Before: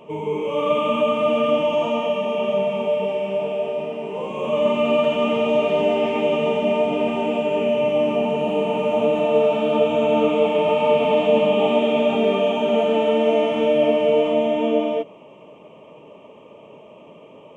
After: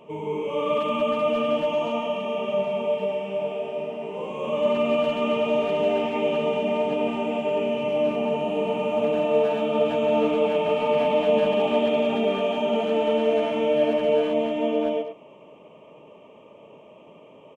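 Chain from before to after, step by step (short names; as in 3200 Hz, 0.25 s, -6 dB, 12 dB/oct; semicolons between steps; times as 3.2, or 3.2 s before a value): speakerphone echo 0.1 s, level -7 dB; gain -4.5 dB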